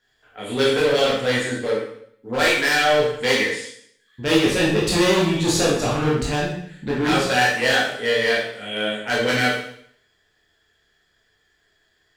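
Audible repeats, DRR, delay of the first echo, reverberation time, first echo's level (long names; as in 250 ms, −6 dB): no echo audible, −5.5 dB, no echo audible, 0.65 s, no echo audible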